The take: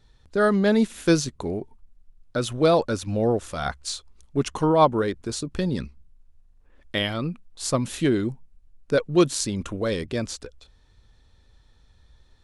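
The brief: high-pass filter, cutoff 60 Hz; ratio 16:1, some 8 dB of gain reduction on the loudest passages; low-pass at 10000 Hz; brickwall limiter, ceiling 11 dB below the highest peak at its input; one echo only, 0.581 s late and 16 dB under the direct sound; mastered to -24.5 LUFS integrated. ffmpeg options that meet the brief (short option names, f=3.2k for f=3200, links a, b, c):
-af "highpass=60,lowpass=10k,acompressor=threshold=-20dB:ratio=16,alimiter=limit=-19.5dB:level=0:latency=1,aecho=1:1:581:0.158,volume=6dB"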